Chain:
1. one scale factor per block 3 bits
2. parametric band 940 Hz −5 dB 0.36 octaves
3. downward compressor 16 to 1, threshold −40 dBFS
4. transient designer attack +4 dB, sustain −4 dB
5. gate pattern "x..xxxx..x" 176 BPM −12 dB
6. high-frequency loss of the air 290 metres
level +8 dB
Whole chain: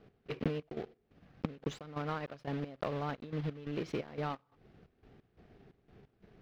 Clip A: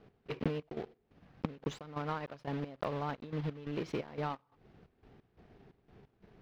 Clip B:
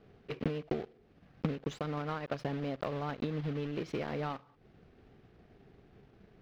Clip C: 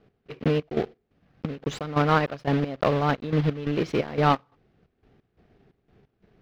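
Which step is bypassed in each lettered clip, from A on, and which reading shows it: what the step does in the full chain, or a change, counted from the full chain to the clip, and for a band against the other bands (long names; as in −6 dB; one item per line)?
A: 2, 1 kHz band +1.5 dB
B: 5, change in crest factor −2.0 dB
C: 3, average gain reduction 12.5 dB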